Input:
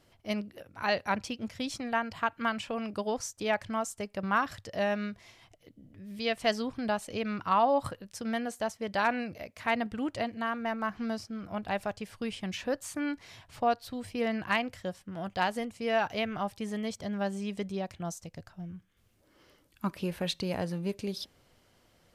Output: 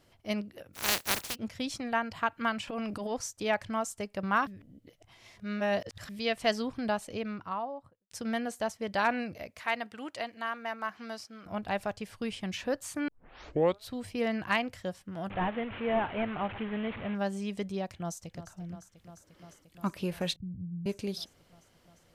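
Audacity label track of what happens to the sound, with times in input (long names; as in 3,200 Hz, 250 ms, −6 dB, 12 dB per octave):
0.730000	1.340000	compressing power law on the bin magnitudes exponent 0.17
2.670000	3.150000	transient designer attack −11 dB, sustain +7 dB
4.470000	6.090000	reverse
6.830000	8.110000	fade out and dull
9.590000	11.460000	high-pass filter 790 Hz 6 dB per octave
13.080000	13.080000	tape start 0.80 s
15.300000	17.150000	linear delta modulator 16 kbit/s, step −35 dBFS
17.940000	18.530000	delay throw 350 ms, feedback 85%, level −13 dB
20.360000	20.860000	inverse Chebyshev low-pass filter stop band from 800 Hz, stop band 70 dB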